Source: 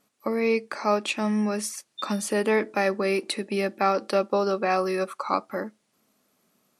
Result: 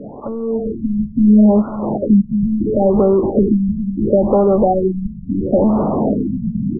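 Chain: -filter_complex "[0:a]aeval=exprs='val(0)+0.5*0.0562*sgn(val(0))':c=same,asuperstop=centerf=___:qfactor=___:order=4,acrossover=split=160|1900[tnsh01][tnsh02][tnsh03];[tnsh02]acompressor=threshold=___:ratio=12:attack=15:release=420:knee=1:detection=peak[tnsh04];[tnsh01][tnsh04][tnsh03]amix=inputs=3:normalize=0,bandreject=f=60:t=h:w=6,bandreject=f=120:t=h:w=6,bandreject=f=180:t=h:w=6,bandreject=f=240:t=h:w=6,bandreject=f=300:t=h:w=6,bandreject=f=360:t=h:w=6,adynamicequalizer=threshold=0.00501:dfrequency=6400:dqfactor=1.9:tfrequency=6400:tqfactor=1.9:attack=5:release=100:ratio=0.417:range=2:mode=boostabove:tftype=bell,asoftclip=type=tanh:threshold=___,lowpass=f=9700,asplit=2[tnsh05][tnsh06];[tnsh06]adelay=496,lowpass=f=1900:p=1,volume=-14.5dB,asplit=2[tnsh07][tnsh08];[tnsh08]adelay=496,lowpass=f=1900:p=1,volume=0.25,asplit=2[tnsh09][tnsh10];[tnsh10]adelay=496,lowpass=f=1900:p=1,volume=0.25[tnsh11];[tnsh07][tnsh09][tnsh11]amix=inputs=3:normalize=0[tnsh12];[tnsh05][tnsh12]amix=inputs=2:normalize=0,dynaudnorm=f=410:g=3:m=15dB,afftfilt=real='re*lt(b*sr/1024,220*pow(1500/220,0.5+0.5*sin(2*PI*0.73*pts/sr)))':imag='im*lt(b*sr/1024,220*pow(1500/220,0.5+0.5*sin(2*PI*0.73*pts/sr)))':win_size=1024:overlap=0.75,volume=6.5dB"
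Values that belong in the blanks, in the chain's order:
1600, 0.82, -31dB, -24dB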